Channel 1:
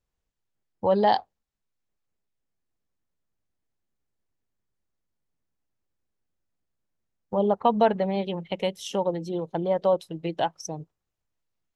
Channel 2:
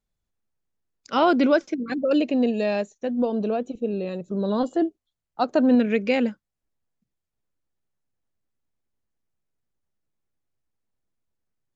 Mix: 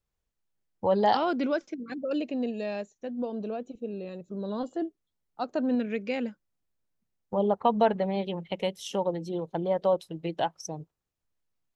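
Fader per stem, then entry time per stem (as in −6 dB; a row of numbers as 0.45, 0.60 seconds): −2.5, −9.0 decibels; 0.00, 0.00 seconds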